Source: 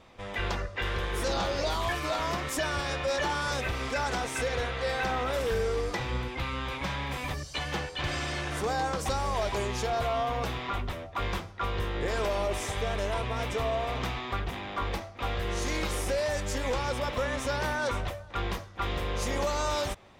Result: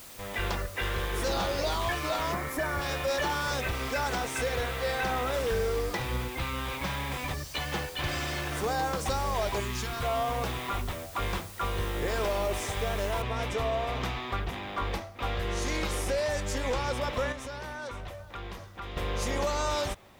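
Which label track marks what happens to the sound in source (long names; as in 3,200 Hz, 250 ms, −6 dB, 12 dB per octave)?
2.330000	2.810000	gain on a spectral selection 2,400–10,000 Hz −11 dB
9.600000	10.030000	flat-topped bell 600 Hz −12 dB 1.2 octaves
13.220000	13.220000	noise floor change −48 dB −69 dB
17.320000	18.970000	downward compressor 3 to 1, threshold −38 dBFS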